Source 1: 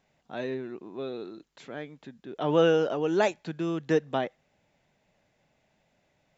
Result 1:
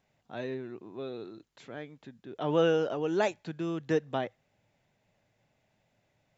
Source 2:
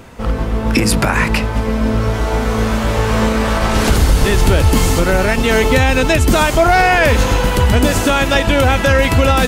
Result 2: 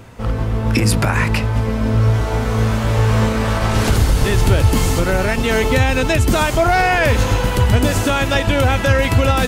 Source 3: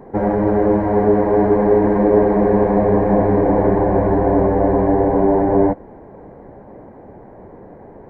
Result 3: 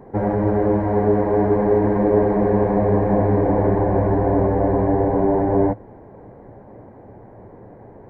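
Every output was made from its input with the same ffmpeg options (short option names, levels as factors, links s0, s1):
-af "equalizer=f=110:w=4.9:g=10,volume=0.668"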